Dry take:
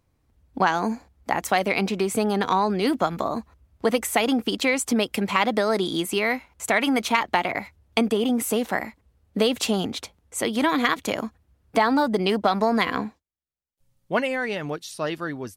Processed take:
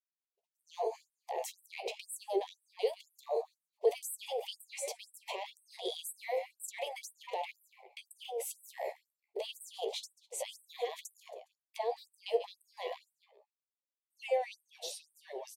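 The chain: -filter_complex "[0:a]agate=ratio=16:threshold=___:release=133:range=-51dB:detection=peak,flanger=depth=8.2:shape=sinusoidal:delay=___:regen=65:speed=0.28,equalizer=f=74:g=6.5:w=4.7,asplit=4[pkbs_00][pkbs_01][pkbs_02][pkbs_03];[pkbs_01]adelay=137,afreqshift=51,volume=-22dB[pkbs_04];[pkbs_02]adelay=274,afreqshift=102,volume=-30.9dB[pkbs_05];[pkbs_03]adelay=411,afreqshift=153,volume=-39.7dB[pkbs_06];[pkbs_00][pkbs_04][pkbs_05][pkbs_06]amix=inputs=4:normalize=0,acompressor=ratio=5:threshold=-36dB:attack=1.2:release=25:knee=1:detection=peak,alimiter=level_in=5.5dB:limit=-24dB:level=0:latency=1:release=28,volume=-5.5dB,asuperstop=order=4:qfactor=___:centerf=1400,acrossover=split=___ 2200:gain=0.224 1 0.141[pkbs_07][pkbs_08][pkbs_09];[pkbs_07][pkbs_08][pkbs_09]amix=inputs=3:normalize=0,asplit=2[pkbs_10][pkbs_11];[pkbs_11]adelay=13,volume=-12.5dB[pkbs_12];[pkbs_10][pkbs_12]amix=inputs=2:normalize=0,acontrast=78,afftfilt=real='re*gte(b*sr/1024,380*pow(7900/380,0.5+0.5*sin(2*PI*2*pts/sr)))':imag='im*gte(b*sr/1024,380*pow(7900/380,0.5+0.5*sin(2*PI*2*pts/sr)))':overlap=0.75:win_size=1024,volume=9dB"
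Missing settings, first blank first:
-58dB, 6.4, 0.51, 190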